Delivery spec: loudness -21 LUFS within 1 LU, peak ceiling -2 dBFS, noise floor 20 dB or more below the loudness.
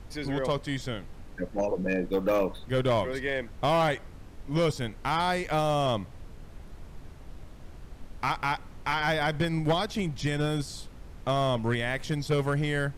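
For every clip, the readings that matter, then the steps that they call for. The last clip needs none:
clipped samples 0.9%; clipping level -19.0 dBFS; noise floor -47 dBFS; noise floor target -49 dBFS; loudness -29.0 LUFS; peak level -19.0 dBFS; loudness target -21.0 LUFS
-> clip repair -19 dBFS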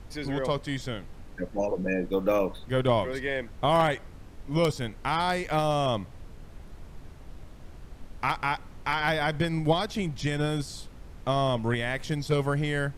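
clipped samples 0.0%; noise floor -47 dBFS; noise floor target -48 dBFS
-> noise print and reduce 6 dB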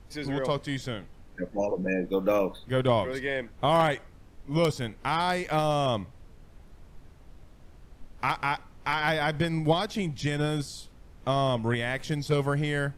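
noise floor -53 dBFS; loudness -28.0 LUFS; peak level -10.0 dBFS; loudness target -21.0 LUFS
-> trim +7 dB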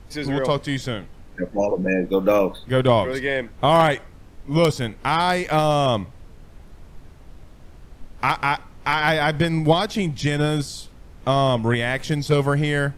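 loudness -21.0 LUFS; peak level -3.0 dBFS; noise floor -46 dBFS

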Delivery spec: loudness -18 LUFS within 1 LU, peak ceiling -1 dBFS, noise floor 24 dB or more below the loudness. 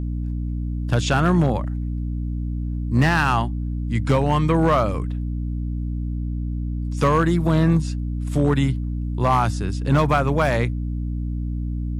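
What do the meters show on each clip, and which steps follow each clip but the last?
clipped samples 1.2%; clipping level -10.0 dBFS; hum 60 Hz; highest harmonic 300 Hz; hum level -23 dBFS; loudness -22.0 LUFS; peak level -10.0 dBFS; loudness target -18.0 LUFS
-> clip repair -10 dBFS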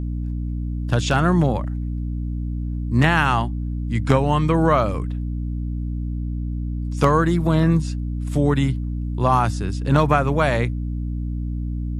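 clipped samples 0.0%; hum 60 Hz; highest harmonic 300 Hz; hum level -23 dBFS
-> hum notches 60/120/180/240/300 Hz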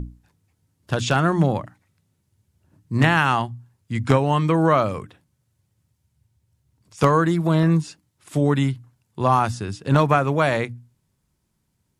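hum not found; loudness -20.5 LUFS; peak level -1.0 dBFS; loudness target -18.0 LUFS
-> trim +2.5 dB; peak limiter -1 dBFS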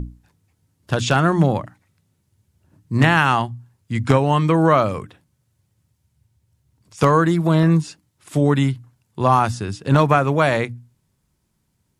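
loudness -18.5 LUFS; peak level -1.0 dBFS; noise floor -69 dBFS

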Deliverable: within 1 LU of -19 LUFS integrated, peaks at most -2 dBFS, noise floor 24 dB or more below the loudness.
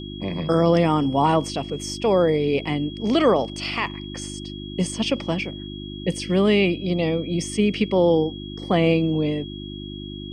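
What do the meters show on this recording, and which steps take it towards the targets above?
hum 50 Hz; highest harmonic 350 Hz; hum level -33 dBFS; steady tone 3.3 kHz; tone level -39 dBFS; loudness -22.0 LUFS; peak level -6.5 dBFS; loudness target -19.0 LUFS
-> de-hum 50 Hz, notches 7; band-stop 3.3 kHz, Q 30; trim +3 dB

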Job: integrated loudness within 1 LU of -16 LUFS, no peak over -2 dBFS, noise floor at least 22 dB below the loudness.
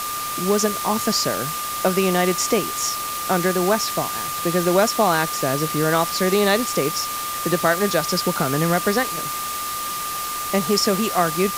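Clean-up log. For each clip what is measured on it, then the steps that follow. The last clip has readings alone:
steady tone 1.2 kHz; tone level -27 dBFS; noise floor -27 dBFS; noise floor target -43 dBFS; loudness -20.5 LUFS; peak level -4.0 dBFS; loudness target -16.0 LUFS
-> band-stop 1.2 kHz, Q 30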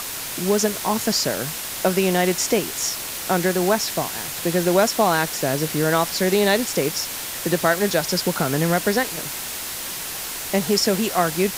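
steady tone not found; noise floor -30 dBFS; noise floor target -43 dBFS
-> noise print and reduce 13 dB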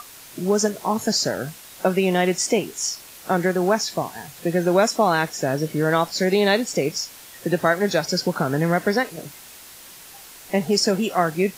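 noise floor -43 dBFS; noise floor target -44 dBFS
-> noise print and reduce 6 dB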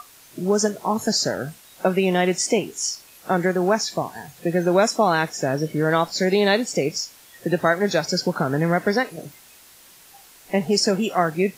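noise floor -49 dBFS; loudness -22.0 LUFS; peak level -4.5 dBFS; loudness target -16.0 LUFS
-> trim +6 dB; peak limiter -2 dBFS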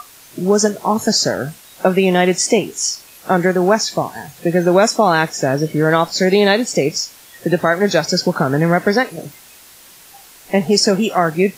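loudness -16.0 LUFS; peak level -2.0 dBFS; noise floor -43 dBFS

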